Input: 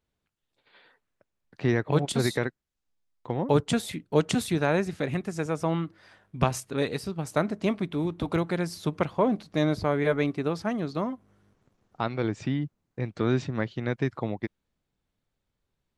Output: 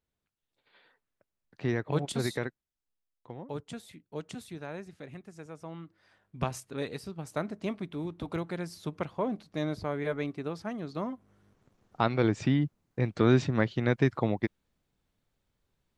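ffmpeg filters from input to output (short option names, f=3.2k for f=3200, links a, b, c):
-af "volume=13dB,afade=t=out:st=2.47:d=1.02:silence=0.298538,afade=t=in:st=5.74:d=0.63:silence=0.375837,afade=t=in:st=10.83:d=1.18:silence=0.316228"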